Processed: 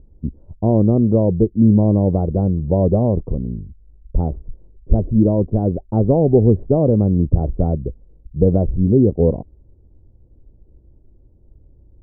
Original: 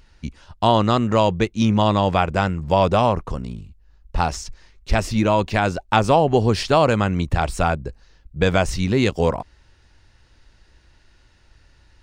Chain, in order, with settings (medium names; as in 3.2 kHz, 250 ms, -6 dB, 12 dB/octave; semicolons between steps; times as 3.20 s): inverse Chebyshev low-pass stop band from 2.2 kHz, stop band 70 dB; trim +6 dB